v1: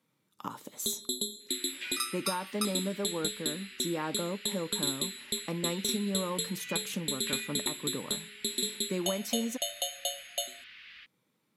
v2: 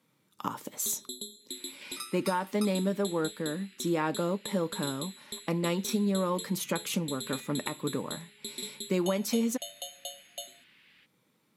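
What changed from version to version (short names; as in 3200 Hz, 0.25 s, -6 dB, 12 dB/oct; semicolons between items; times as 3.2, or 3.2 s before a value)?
speech +5.0 dB; first sound -7.0 dB; second sound -10.5 dB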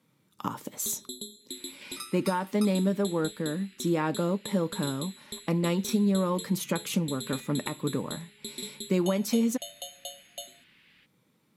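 master: add low shelf 210 Hz +7.5 dB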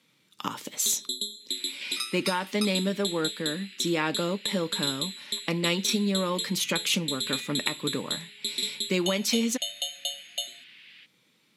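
master: add weighting filter D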